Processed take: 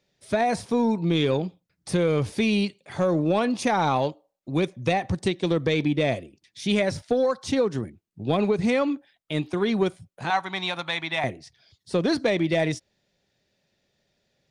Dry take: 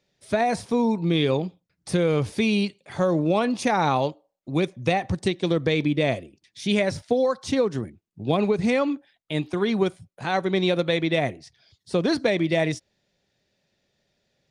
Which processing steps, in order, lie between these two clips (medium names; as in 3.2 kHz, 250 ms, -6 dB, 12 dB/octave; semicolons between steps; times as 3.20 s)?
10.30–11.24 s: resonant low shelf 640 Hz -10.5 dB, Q 3; saturation -10.5 dBFS, distortion -24 dB